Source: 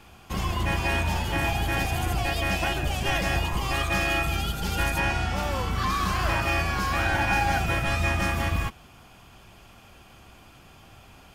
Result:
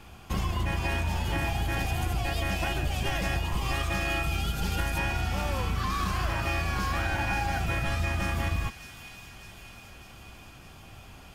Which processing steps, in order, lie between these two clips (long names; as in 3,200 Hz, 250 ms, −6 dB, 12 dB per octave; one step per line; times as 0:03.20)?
low-shelf EQ 170 Hz +4.5 dB
downward compressor, threshold −25 dBFS, peak gain reduction 7.5 dB
on a send: delay with a high-pass on its return 604 ms, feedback 63%, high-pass 2,900 Hz, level −8 dB